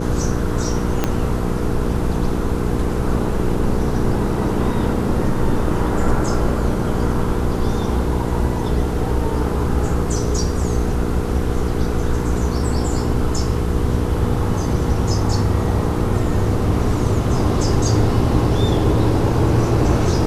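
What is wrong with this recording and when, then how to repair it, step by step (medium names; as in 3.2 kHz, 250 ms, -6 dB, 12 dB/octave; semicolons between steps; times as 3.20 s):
hum 60 Hz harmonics 8 -23 dBFS
1.04 s: pop -4 dBFS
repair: de-click; de-hum 60 Hz, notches 8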